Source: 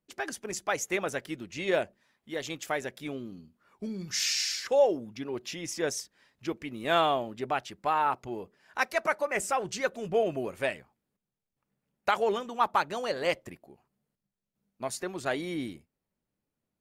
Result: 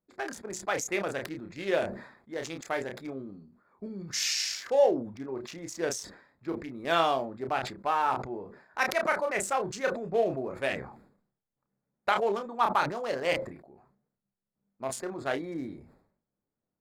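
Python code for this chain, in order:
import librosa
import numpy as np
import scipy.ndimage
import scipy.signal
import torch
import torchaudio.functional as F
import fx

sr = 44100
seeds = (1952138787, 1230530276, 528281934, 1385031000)

y = fx.wiener(x, sr, points=15)
y = fx.low_shelf(y, sr, hz=280.0, db=-4.5)
y = fx.doubler(y, sr, ms=30.0, db=-8.5)
y = fx.sustainer(y, sr, db_per_s=89.0)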